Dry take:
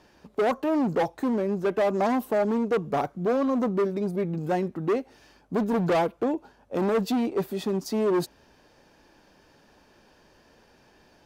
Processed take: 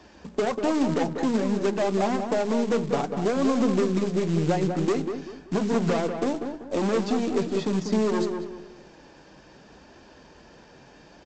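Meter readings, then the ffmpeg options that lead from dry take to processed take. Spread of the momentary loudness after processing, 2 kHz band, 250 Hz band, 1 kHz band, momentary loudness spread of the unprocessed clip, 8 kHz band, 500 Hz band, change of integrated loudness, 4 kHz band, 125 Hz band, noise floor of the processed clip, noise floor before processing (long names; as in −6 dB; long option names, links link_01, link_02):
7 LU, +1.0 dB, +2.0 dB, −1.0 dB, 5 LU, +6.5 dB, 0.0 dB, +1.0 dB, +4.0 dB, +4.0 dB, −52 dBFS, −60 dBFS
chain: -filter_complex "[0:a]highpass=45,equalizer=frequency=99:width=6.1:gain=-6,bandreject=frequency=60:width_type=h:width=6,bandreject=frequency=120:width_type=h:width=6,bandreject=frequency=180:width_type=h:width=6,bandreject=frequency=240:width_type=h:width=6,bandreject=frequency=300:width_type=h:width=6,bandreject=frequency=360:width_type=h:width=6,bandreject=frequency=420:width_type=h:width=6,acrossover=split=140|2000[link_01][link_02][link_03];[link_01]acompressor=threshold=-54dB:ratio=4[link_04];[link_02]acompressor=threshold=-31dB:ratio=4[link_05];[link_03]acompressor=threshold=-46dB:ratio=4[link_06];[link_04][link_05][link_06]amix=inputs=3:normalize=0,lowshelf=frequency=270:gain=5.5,aeval=exprs='0.112*(cos(1*acos(clip(val(0)/0.112,-1,1)))-cos(1*PI/2))+0.00178*(cos(5*acos(clip(val(0)/0.112,-1,1)))-cos(5*PI/2))+0.00398*(cos(8*acos(clip(val(0)/0.112,-1,1)))-cos(8*PI/2))':channel_layout=same,flanger=delay=2.7:depth=4.9:regen=-48:speed=0.6:shape=triangular,aresample=16000,acrusher=bits=4:mode=log:mix=0:aa=0.000001,aresample=44100,asplit=2[link_07][link_08];[link_08]adelay=193,lowpass=frequency=1700:poles=1,volume=-6dB,asplit=2[link_09][link_10];[link_10]adelay=193,lowpass=frequency=1700:poles=1,volume=0.34,asplit=2[link_11][link_12];[link_12]adelay=193,lowpass=frequency=1700:poles=1,volume=0.34,asplit=2[link_13][link_14];[link_14]adelay=193,lowpass=frequency=1700:poles=1,volume=0.34[link_15];[link_07][link_09][link_11][link_13][link_15]amix=inputs=5:normalize=0,volume=9dB"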